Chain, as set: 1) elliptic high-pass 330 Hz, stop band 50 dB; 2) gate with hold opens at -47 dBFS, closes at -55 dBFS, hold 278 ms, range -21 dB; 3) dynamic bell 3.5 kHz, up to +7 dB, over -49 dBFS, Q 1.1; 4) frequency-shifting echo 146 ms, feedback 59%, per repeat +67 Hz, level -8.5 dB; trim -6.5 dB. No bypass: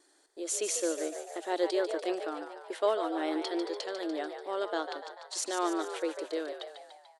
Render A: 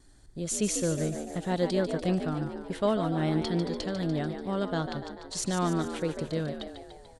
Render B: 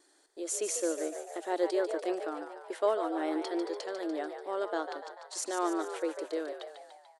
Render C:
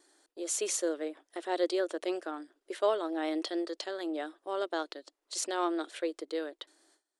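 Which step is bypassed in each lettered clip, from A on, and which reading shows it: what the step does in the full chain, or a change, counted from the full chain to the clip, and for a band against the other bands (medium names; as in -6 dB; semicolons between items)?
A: 1, 250 Hz band +6.0 dB; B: 3, 4 kHz band -5.0 dB; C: 4, echo-to-direct -6.5 dB to none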